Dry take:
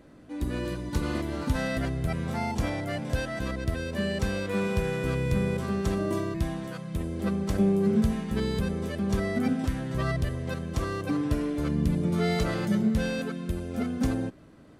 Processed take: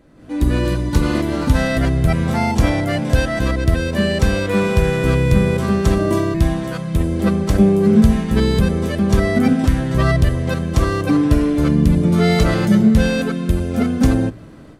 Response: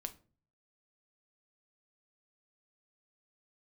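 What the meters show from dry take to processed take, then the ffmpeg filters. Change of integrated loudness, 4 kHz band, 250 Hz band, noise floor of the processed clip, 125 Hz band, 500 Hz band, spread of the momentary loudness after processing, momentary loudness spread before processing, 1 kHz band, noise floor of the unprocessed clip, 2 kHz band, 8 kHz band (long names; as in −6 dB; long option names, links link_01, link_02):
+12.0 dB, +11.5 dB, +12.0 dB, −36 dBFS, +13.0 dB, +11.0 dB, 6 LU, 7 LU, +11.0 dB, −51 dBFS, +11.0 dB, +11.0 dB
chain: -filter_complex "[0:a]dynaudnorm=framelen=150:gausssize=3:maxgain=11.5dB,asplit=2[link_01][link_02];[1:a]atrim=start_sample=2205,lowshelf=frequency=170:gain=10.5[link_03];[link_02][link_03]afir=irnorm=-1:irlink=0,volume=-7.5dB[link_04];[link_01][link_04]amix=inputs=2:normalize=0,volume=-2dB"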